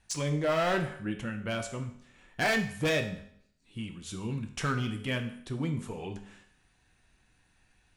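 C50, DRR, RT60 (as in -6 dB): 10.0 dB, 4.5 dB, 0.65 s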